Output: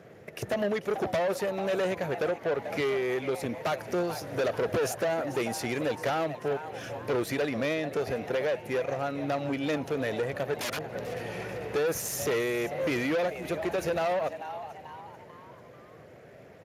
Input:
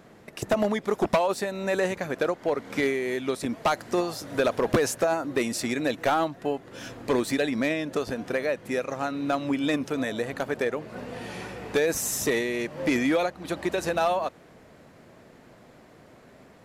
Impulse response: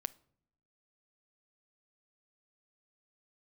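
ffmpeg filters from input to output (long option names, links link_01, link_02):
-filter_complex "[0:a]equalizer=frequency=250:width_type=o:width=1:gain=-11,equalizer=frequency=500:width_type=o:width=1:gain=4,equalizer=frequency=1000:width_type=o:width=1:gain=-10,equalizer=frequency=4000:width_type=o:width=1:gain=-8,equalizer=frequency=8000:width_type=o:width=1:gain=-6,asettb=1/sr,asplit=3[link_01][link_02][link_03];[link_01]atrim=end=10.574[link_04];[link_02]atrim=start=10.57:end=11.03,asetpts=PTS-STARTPTS,afade=type=in:duration=0.004:curve=qsin,afade=type=out:start_time=0.456:duration=0.004:curve=qsin,aeval=exprs='(mod(35.5*val(0)+1,2)-1)/35.5':channel_layout=same[link_05];[link_03]atrim=start=11.026[link_06];[link_04][link_05]acrossfade=duration=0.004:curve1=hsin:curve2=qsin[link_07];[link_07][link_06]acrossfade=duration=0.004:curve1=qsin:curve2=hsin,asplit=2[link_08][link_09];[link_09]asplit=4[link_10][link_11][link_12][link_13];[link_10]adelay=440,afreqshift=130,volume=-16dB[link_14];[link_11]adelay=880,afreqshift=260,volume=-23.1dB[link_15];[link_12]adelay=1320,afreqshift=390,volume=-30.3dB[link_16];[link_13]adelay=1760,afreqshift=520,volume=-37.4dB[link_17];[link_14][link_15][link_16][link_17]amix=inputs=4:normalize=0[link_18];[link_08][link_18]amix=inputs=2:normalize=0,aeval=exprs='(tanh(31.6*val(0)+0.25)-tanh(0.25))/31.6':channel_layout=same,volume=5.5dB" -ar 32000 -c:a libspeex -b:a 36k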